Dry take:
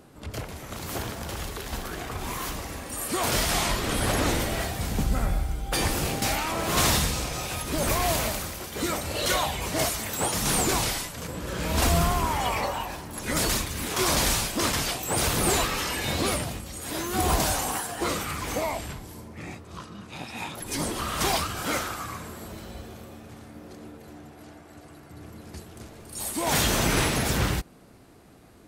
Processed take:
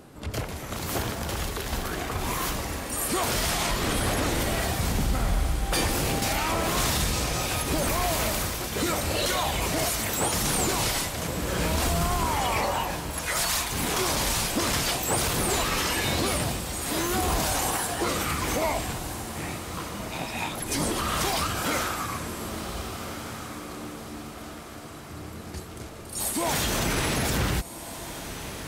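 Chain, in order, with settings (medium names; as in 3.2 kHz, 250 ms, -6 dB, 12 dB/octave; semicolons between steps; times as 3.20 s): 13.11–13.72 s: high-pass 670 Hz 24 dB/octave; peak limiter -20.5 dBFS, peak gain reduction 8.5 dB; on a send: echo that smears into a reverb 1555 ms, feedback 47%, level -10.5 dB; on the sum: trim +3.5 dB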